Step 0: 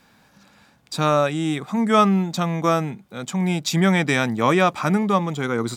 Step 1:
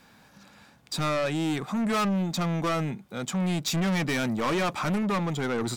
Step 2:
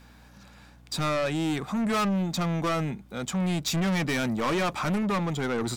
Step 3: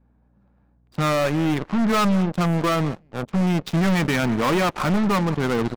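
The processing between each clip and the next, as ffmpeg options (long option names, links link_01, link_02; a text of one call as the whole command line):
ffmpeg -i in.wav -af "asoftclip=type=tanh:threshold=-23.5dB" out.wav
ffmpeg -i in.wav -af "aeval=exprs='val(0)+0.00224*(sin(2*PI*60*n/s)+sin(2*PI*2*60*n/s)/2+sin(2*PI*3*60*n/s)/3+sin(2*PI*4*60*n/s)/4+sin(2*PI*5*60*n/s)/5)':channel_layout=same" out.wav
ffmpeg -i in.wav -af "adynamicsmooth=sensitivity=3.5:basefreq=680,aecho=1:1:188:0.106,aeval=exprs='0.0794*(cos(1*acos(clip(val(0)/0.0794,-1,1)))-cos(1*PI/2))+0.0141*(cos(2*acos(clip(val(0)/0.0794,-1,1)))-cos(2*PI/2))+0.00891*(cos(3*acos(clip(val(0)/0.0794,-1,1)))-cos(3*PI/2))+0.01*(cos(7*acos(clip(val(0)/0.0794,-1,1)))-cos(7*PI/2))':channel_layout=same,volume=7dB" out.wav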